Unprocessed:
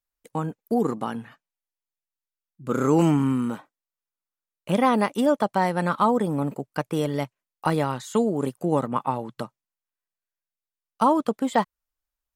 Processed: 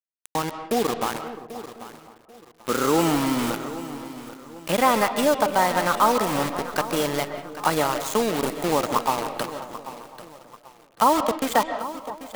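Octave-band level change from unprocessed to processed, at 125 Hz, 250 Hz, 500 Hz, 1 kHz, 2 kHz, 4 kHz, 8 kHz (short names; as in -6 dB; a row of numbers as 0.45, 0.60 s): -6.0, -2.5, +1.5, +3.5, +6.0, +9.5, +11.5 dB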